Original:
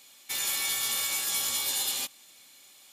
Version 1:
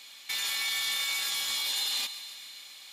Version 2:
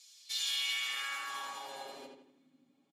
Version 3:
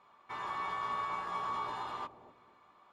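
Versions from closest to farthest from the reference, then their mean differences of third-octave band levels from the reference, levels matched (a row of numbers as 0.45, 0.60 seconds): 1, 2, 3; 5.0, 10.0, 14.5 decibels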